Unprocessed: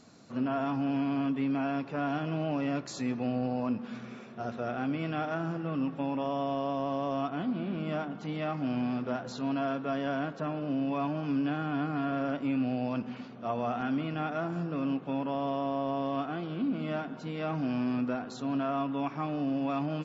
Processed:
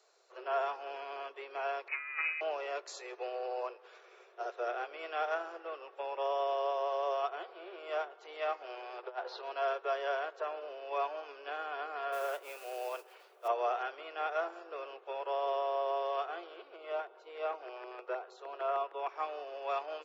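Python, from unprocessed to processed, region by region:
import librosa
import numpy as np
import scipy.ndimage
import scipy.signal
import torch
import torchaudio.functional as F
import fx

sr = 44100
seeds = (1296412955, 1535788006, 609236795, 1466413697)

y = fx.chain(x, sr, fx.low_shelf(hz=67.0, db=-8.5),
    fx.over_compress(threshold_db=-35.0, ratio=-0.5),
    fx.freq_invert(carrier_hz=2700), at=(1.88, 2.41))
y = fx.chain(y, sr, fx.steep_lowpass(hz=5100.0, slope=48),
    fx.peak_eq(hz=880.0, db=5.0, octaves=0.41),
    fx.over_compress(threshold_db=-35.0, ratio=-0.5), at=(8.98, 9.43))
y = fx.chain(y, sr, fx.highpass(hz=210.0, slope=12),
    fx.mod_noise(seeds[0], snr_db=22), at=(12.12, 13.48))
y = fx.chain(y, sr, fx.lowpass(hz=2600.0, slope=6),
    fx.filter_lfo_notch(shape='square', hz=6.5, low_hz=240.0, high_hz=1700.0, q=2.5), at=(16.76, 19.09))
y = scipy.signal.sosfilt(scipy.signal.butter(16, 370.0, 'highpass', fs=sr, output='sos'), y)
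y = fx.upward_expand(y, sr, threshold_db=-51.0, expansion=1.5)
y = F.gain(torch.from_numpy(y), 2.0).numpy()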